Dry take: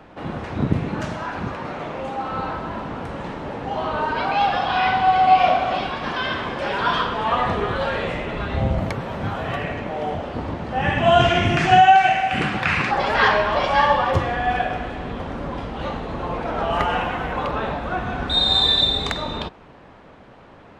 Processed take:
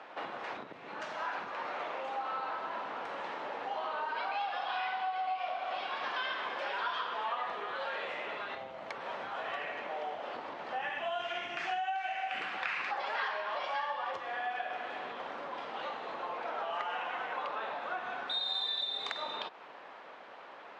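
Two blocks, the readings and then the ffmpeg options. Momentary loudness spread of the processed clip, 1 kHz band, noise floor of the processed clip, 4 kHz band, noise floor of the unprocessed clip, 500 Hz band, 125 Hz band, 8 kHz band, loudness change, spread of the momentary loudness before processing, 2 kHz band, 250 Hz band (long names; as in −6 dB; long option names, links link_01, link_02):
7 LU, −16.0 dB, −50 dBFS, −15.5 dB, −46 dBFS, −16.5 dB, below −35 dB, can't be measured, −16.0 dB, 15 LU, −13.0 dB, −26.0 dB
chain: -af "acompressor=threshold=-31dB:ratio=10,highpass=650,lowpass=5200"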